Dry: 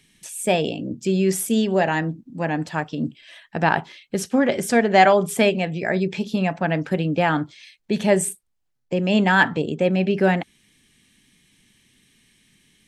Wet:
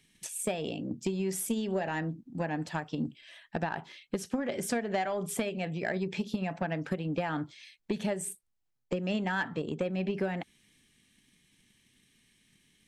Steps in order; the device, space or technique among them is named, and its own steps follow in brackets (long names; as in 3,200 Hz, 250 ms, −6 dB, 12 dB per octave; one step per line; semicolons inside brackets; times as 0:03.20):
drum-bus smash (transient designer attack +8 dB, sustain +2 dB; downward compressor 12 to 1, threshold −18 dBFS, peak gain reduction 13 dB; soft clipping −12 dBFS, distortion −19 dB)
level −8 dB